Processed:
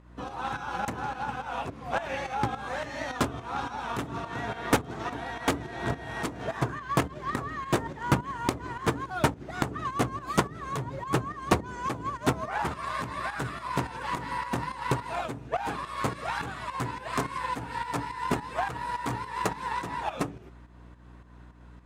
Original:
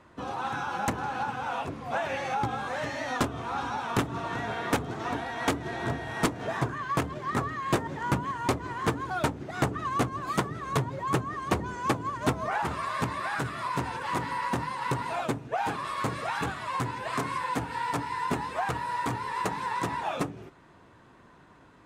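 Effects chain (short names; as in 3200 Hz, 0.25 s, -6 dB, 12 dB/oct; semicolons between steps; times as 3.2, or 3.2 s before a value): hum 60 Hz, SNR 17 dB; pump 106 bpm, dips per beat 2, -9 dB, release 0.242 s; added harmonics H 3 -16 dB, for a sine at -17 dBFS; gain +4.5 dB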